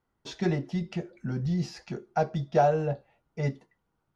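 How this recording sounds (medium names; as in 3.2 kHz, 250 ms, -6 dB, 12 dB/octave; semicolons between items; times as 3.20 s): noise floor -79 dBFS; spectral tilt -7.0 dB/octave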